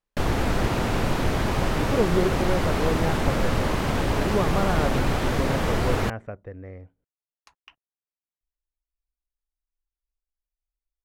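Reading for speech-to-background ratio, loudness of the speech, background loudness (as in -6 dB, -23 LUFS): -4.0 dB, -29.5 LUFS, -25.5 LUFS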